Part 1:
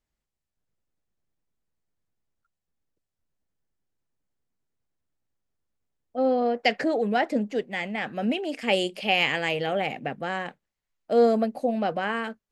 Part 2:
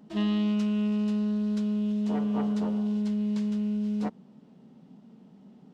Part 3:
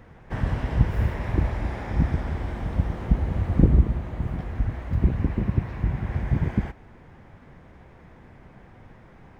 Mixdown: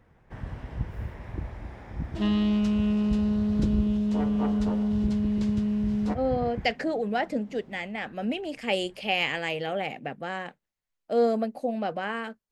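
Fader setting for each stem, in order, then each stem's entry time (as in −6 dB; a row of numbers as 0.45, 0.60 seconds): −3.5, +2.0, −11.5 decibels; 0.00, 2.05, 0.00 seconds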